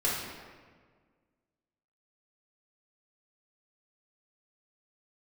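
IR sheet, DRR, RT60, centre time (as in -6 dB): -6.5 dB, 1.6 s, 81 ms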